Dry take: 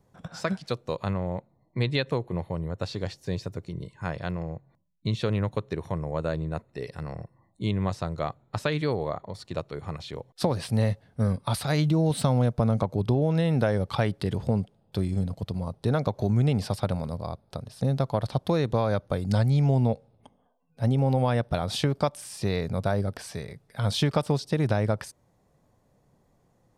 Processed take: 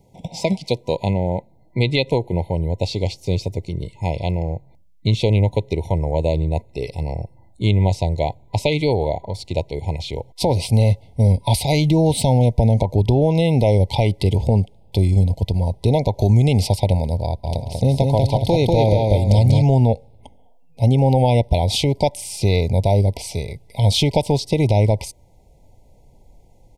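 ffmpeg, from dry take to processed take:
-filter_complex "[0:a]asettb=1/sr,asplit=3[s0][s1][s2];[s0]atrim=end=16.194[s3];[s1]atrim=start=16.19:end=16.67,asetpts=PTS-STARTPTS,afade=t=in:d=0.004:c=qsin,afade=t=out:st=0.476:d=0.004:c=qsin,highshelf=f=4700:g=5.5[s4];[s2]atrim=start=16.666[s5];[s3][s4]acrossfade=d=0.004:c1=hsin:c2=qsin[s6];[s6][s5]acrossfade=d=0.004:c1=qsin:c2=hsin,asplit=3[s7][s8][s9];[s7]afade=t=out:st=17.43:d=0.02[s10];[s8]aecho=1:1:192|384|576|768|960:0.708|0.255|0.0917|0.033|0.0119,afade=t=in:st=17.43:d=0.02,afade=t=out:st=19.61:d=0.02[s11];[s9]afade=t=in:st=19.61:d=0.02[s12];[s10][s11][s12]amix=inputs=3:normalize=0,afftfilt=real='re*(1-between(b*sr/4096,990,2000))':imag='im*(1-between(b*sr/4096,990,2000))':win_size=4096:overlap=0.75,asubboost=boost=7:cutoff=59,alimiter=level_in=5.31:limit=0.891:release=50:level=0:latency=1,volume=0.596"

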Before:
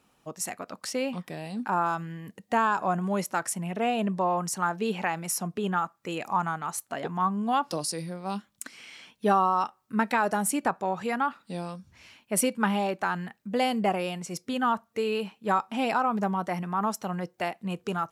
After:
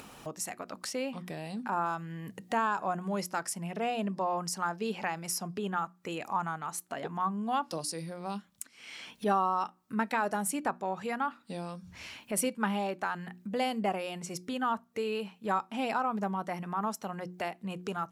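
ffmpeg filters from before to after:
-filter_complex "[0:a]asettb=1/sr,asplit=3[s0][s1][s2];[s0]atrim=end=3.134[s3];[s1]atrim=start=3.13:end=5.59,asetpts=PTS-STARTPTS,afade=t=in:d=0.004:c=qsin,afade=t=out:st=2.456:d=0.004:c=qsin,equalizer=f=5000:t=o:w=0.22:g=10[s4];[s2]atrim=start=5.586[s5];[s3][s4]acrossfade=d=0.004:c1=hsin:c2=qsin[s6];[s6][s5]acrossfade=d=0.004:c1=qsin:c2=hsin,asplit=2[s7][s8];[s7]atrim=end=8.66,asetpts=PTS-STARTPTS,afade=t=out:st=8.656:d=0.004:c=hsin:silence=0.16788[s9];[s8]atrim=start=8.66,asetpts=PTS-STARTPTS,afade=t=in:d=0.63:silence=0.16788[s10];[s9][s10]concat=n=2:v=0:a=1,bandreject=f=60:t=h:w=6,bandreject=f=120:t=h:w=6,bandreject=f=180:t=h:w=6,bandreject=f=240:t=h:w=6,bandreject=f=300:t=h:w=6,bandreject=f=360:t=h:w=6,acompressor=mode=upward:threshold=0.0398:ratio=2.5,volume=0.562"

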